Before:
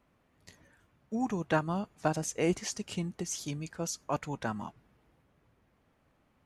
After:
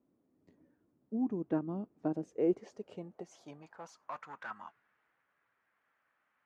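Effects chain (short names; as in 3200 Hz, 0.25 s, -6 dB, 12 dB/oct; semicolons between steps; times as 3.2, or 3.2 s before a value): 3.62–4.51 overloaded stage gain 34 dB; band-pass sweep 300 Hz -> 1600 Hz, 2.02–4.74; gain +2.5 dB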